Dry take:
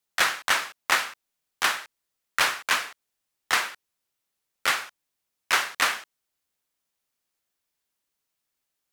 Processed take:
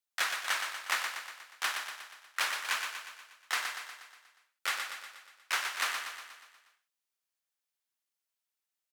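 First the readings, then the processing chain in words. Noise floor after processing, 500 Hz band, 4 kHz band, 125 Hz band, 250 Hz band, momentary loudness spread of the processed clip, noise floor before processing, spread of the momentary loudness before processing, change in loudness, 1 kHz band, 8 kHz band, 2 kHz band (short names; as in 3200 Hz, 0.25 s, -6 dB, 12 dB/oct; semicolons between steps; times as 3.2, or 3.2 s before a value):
under -85 dBFS, -12.0 dB, -7.5 dB, n/a, under -15 dB, 16 LU, -82 dBFS, 12 LU, -8.5 dB, -9.0 dB, -7.0 dB, -8.0 dB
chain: HPF 810 Hz 6 dB/oct; feedback echo 0.12 s, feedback 56%, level -6 dB; gain -8.5 dB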